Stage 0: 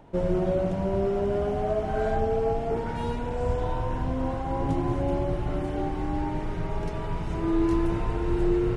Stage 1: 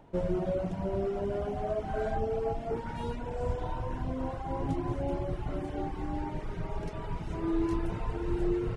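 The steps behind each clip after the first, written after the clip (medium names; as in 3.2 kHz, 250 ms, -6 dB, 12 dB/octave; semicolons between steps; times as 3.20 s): reverb removal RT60 0.7 s; trim -4 dB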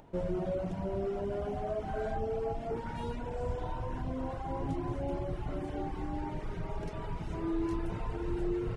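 in parallel at 0 dB: peak limiter -29.5 dBFS, peak gain reduction 11 dB; on the sum: upward compressor, threshold -49 dBFS; trim -6.5 dB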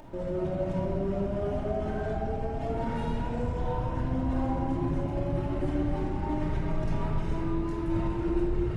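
peak limiter -34 dBFS, peak gain reduction 11 dB; reverberation RT60 2.0 s, pre-delay 3 ms, DRR -4 dB; trim +4 dB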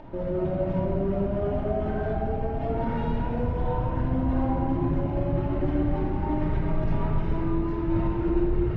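distance through air 240 m; trim +4 dB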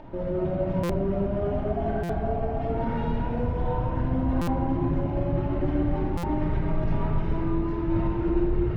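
spectral replace 1.76–2.61 s, 570–1400 Hz after; buffer glitch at 0.83/2.03/4.41/6.17 s, samples 256, times 10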